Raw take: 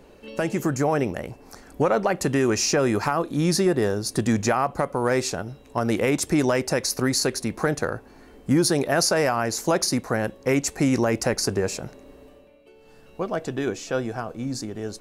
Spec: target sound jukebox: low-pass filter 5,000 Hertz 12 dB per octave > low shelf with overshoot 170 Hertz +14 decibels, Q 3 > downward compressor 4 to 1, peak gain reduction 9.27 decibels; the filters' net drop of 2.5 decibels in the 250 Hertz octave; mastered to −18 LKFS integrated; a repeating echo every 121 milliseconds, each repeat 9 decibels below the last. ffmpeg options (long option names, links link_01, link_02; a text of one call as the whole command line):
ffmpeg -i in.wav -af "lowpass=5000,lowshelf=frequency=170:width_type=q:width=3:gain=14,equalizer=frequency=250:width_type=o:gain=-8,aecho=1:1:121|242|363|484:0.355|0.124|0.0435|0.0152,acompressor=threshold=-17dB:ratio=4,volume=4dB" out.wav